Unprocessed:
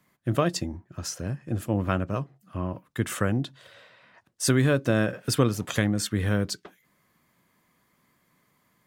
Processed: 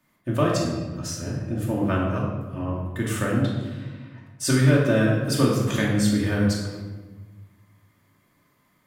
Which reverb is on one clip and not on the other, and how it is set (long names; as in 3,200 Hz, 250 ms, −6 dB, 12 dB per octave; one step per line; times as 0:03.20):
rectangular room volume 850 cubic metres, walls mixed, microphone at 2.6 metres
level −3 dB